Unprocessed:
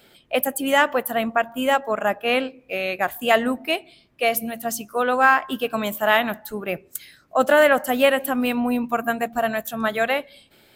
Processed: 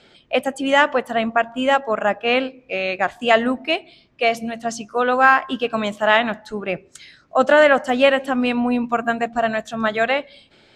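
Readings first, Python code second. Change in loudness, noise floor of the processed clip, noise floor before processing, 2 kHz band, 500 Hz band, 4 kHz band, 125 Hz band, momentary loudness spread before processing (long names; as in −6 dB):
+2.5 dB, −54 dBFS, −56 dBFS, +2.5 dB, +2.5 dB, +2.5 dB, +2.5 dB, 10 LU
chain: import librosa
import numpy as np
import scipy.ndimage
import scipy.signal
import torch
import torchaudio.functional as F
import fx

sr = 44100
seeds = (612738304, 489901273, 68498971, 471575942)

y = scipy.signal.sosfilt(scipy.signal.butter(4, 6700.0, 'lowpass', fs=sr, output='sos'), x)
y = y * librosa.db_to_amplitude(2.5)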